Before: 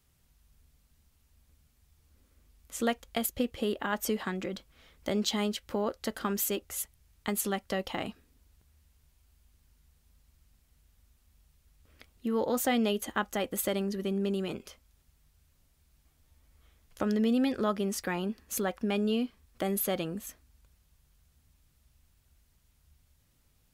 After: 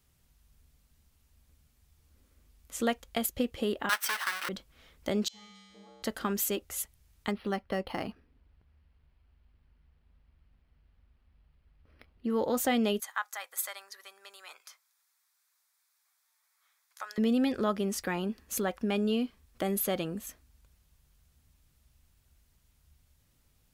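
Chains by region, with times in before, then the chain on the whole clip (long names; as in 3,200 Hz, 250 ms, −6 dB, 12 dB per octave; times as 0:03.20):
0:03.89–0:04.49: each half-wave held at its own peak + high-pass with resonance 1,400 Hz, resonance Q 1.9 + notch filter 6,900 Hz, Q 7.6
0:05.28–0:06.03: low-pass filter 7,300 Hz + tuned comb filter 65 Hz, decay 1.9 s, harmonics odd, mix 100%
0:07.31–0:12.30: bad sample-rate conversion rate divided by 6×, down filtered, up hold + moving average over 6 samples
0:13.00–0:17.18: high-pass filter 950 Hz 24 dB per octave + parametric band 2,900 Hz −11.5 dB 0.3 octaves
whole clip: no processing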